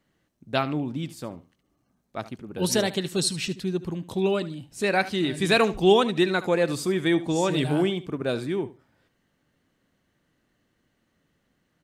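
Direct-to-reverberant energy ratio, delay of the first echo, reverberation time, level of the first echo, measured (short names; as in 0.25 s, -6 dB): none, 74 ms, none, -16.0 dB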